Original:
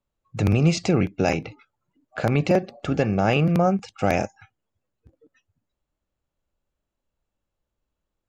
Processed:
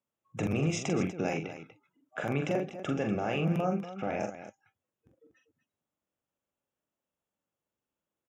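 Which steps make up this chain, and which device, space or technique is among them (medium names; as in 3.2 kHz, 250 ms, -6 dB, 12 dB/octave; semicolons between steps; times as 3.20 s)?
PA system with an anti-feedback notch (high-pass 160 Hz 12 dB/octave; Butterworth band-stop 4.4 kHz, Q 2.8; peak limiter -16 dBFS, peak gain reduction 8.5 dB); 3.78–4.20 s: distance through air 220 m; loudspeakers at several distances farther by 15 m -5 dB, 83 m -12 dB; trim -5.5 dB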